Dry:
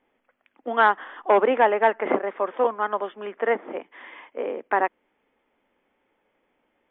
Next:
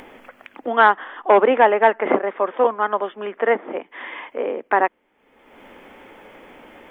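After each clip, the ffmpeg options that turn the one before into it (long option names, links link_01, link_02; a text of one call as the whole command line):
ffmpeg -i in.wav -af "acompressor=mode=upward:threshold=-30dB:ratio=2.5,volume=4.5dB" out.wav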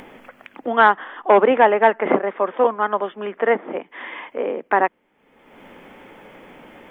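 ffmpeg -i in.wav -af "equalizer=frequency=160:width_type=o:width=0.75:gain=8" out.wav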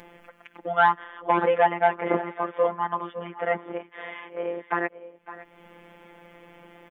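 ffmpeg -i in.wav -af "aecho=1:1:556|568:0.133|0.119,afftfilt=real='hypot(re,im)*cos(PI*b)':imag='0':win_size=1024:overlap=0.75,volume=-3dB" out.wav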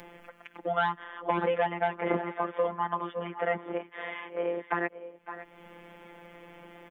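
ffmpeg -i in.wav -filter_complex "[0:a]acrossover=split=240|3000[link_01][link_02][link_03];[link_02]acompressor=threshold=-25dB:ratio=6[link_04];[link_01][link_04][link_03]amix=inputs=3:normalize=0" out.wav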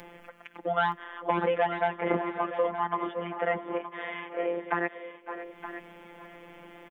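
ffmpeg -i in.wav -af "aecho=1:1:920:0.266,volume=1dB" out.wav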